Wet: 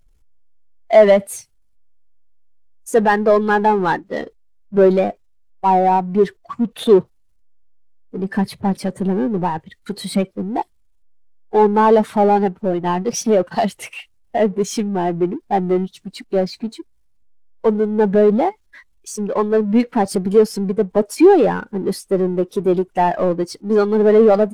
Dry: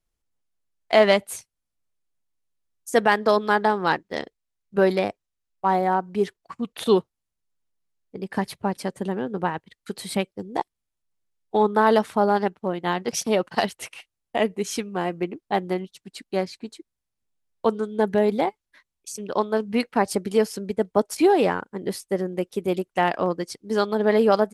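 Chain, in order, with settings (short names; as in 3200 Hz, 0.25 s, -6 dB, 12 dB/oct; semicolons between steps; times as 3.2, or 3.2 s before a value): power-law curve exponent 0.5; spectral expander 1.5:1; gain +2.5 dB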